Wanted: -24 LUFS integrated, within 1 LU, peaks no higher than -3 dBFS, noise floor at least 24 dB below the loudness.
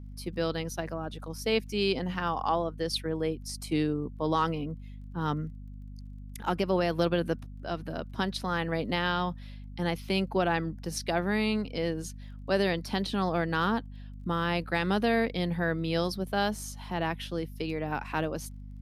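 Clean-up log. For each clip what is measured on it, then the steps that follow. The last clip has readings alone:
ticks 15/s; hum 50 Hz; harmonics up to 250 Hz; hum level -40 dBFS; loudness -30.5 LUFS; peak -14.5 dBFS; loudness target -24.0 LUFS
-> de-click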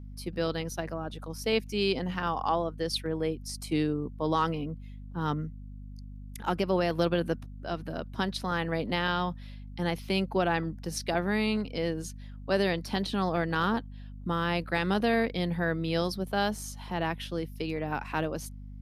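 ticks 0/s; hum 50 Hz; harmonics up to 250 Hz; hum level -40 dBFS
-> notches 50/100/150/200/250 Hz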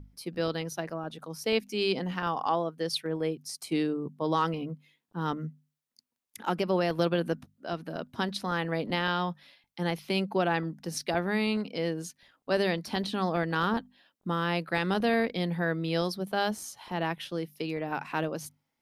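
hum none; loudness -31.0 LUFS; peak -14.5 dBFS; loudness target -24.0 LUFS
-> gain +7 dB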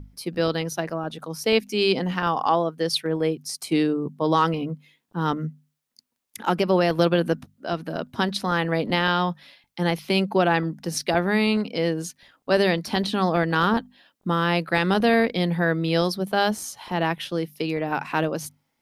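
loudness -24.0 LUFS; peak -7.5 dBFS; noise floor -75 dBFS

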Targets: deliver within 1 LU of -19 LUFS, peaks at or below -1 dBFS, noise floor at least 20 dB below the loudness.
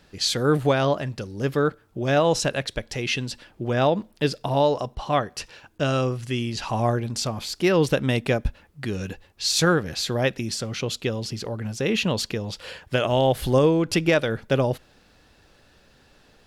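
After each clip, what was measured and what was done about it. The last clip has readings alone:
loudness -24.0 LUFS; peak -9.5 dBFS; loudness target -19.0 LUFS
-> gain +5 dB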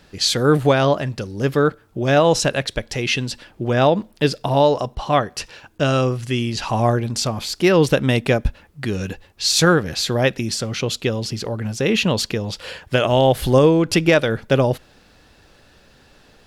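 loudness -19.0 LUFS; peak -4.5 dBFS; noise floor -53 dBFS

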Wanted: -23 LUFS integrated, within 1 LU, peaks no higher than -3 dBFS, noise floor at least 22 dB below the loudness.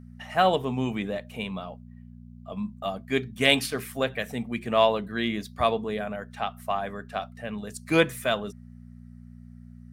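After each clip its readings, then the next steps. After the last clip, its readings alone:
hum 60 Hz; harmonics up to 240 Hz; hum level -43 dBFS; loudness -27.5 LUFS; peak -4.0 dBFS; loudness target -23.0 LUFS
-> de-hum 60 Hz, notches 4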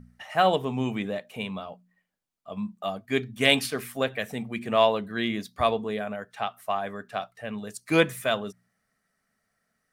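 hum none; loudness -27.5 LUFS; peak -3.5 dBFS; loudness target -23.0 LUFS
-> gain +4.5 dB; limiter -3 dBFS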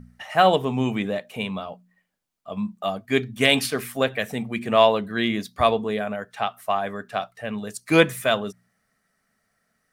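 loudness -23.5 LUFS; peak -3.0 dBFS; noise floor -73 dBFS

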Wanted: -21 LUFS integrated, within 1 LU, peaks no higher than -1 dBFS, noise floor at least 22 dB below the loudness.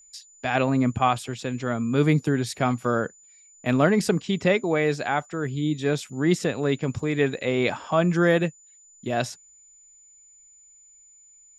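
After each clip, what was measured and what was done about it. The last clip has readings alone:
steady tone 7000 Hz; tone level -51 dBFS; loudness -24.5 LUFS; peak -6.0 dBFS; loudness target -21.0 LUFS
-> notch 7000 Hz, Q 30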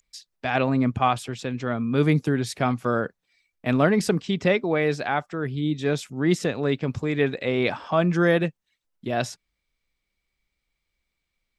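steady tone none; loudness -24.5 LUFS; peak -6.0 dBFS; loudness target -21.0 LUFS
-> gain +3.5 dB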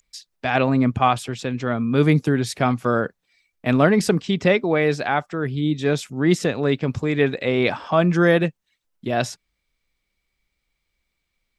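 loudness -21.0 LUFS; peak -2.5 dBFS; noise floor -77 dBFS

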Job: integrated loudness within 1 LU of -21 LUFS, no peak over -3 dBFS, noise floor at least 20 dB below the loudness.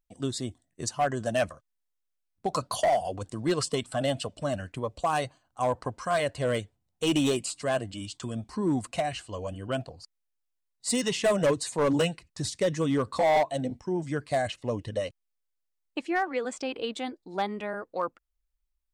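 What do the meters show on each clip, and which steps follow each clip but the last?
clipped 0.9%; flat tops at -19.0 dBFS; loudness -29.5 LUFS; peak -19.0 dBFS; loudness target -21.0 LUFS
-> clip repair -19 dBFS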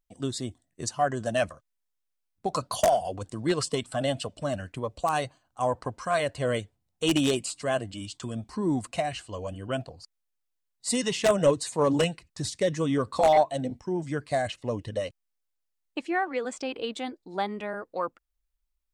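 clipped 0.0%; loudness -29.0 LUFS; peak -10.0 dBFS; loudness target -21.0 LUFS
-> gain +8 dB; limiter -3 dBFS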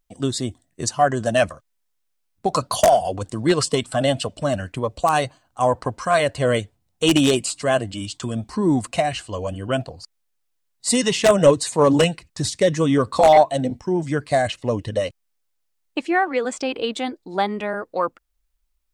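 loudness -21.0 LUFS; peak -3.0 dBFS; noise floor -72 dBFS

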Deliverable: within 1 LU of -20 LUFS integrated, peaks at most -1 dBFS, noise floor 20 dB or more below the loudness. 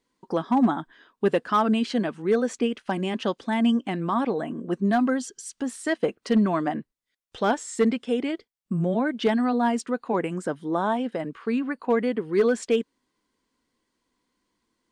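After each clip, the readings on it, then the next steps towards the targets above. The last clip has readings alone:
clipped 0.2%; flat tops at -13.5 dBFS; loudness -25.5 LUFS; peak -13.5 dBFS; loudness target -20.0 LUFS
-> clip repair -13.5 dBFS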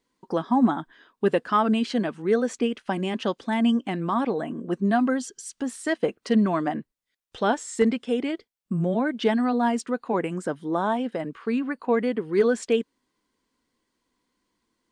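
clipped 0.0%; loudness -25.5 LUFS; peak -9.0 dBFS; loudness target -20.0 LUFS
-> gain +5.5 dB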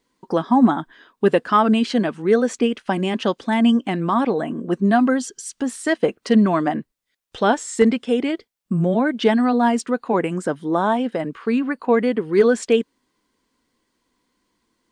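loudness -20.0 LUFS; peak -3.5 dBFS; noise floor -74 dBFS

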